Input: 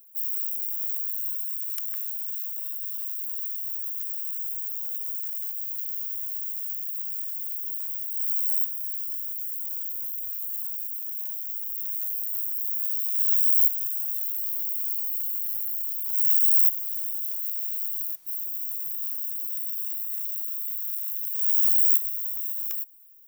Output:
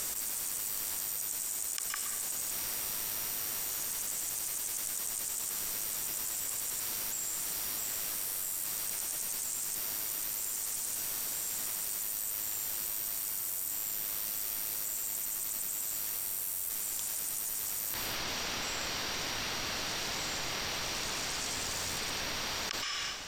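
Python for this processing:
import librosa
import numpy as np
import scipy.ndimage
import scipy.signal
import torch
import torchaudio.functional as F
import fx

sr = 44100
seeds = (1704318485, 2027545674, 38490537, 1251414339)

y = fx.lowpass(x, sr, hz=fx.steps((0.0, 9300.0), (17.94, 5000.0)), slope=24)
y = fx.rev_plate(y, sr, seeds[0], rt60_s=0.74, hf_ratio=1.0, predelay_ms=110, drr_db=13.5)
y = fx.env_flatten(y, sr, amount_pct=100)
y = y * librosa.db_to_amplitude(4.5)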